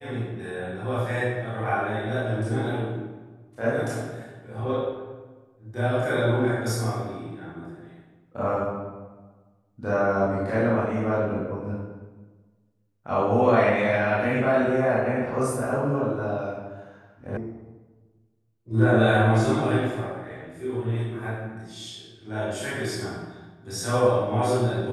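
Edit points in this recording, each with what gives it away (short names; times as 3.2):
17.37 sound cut off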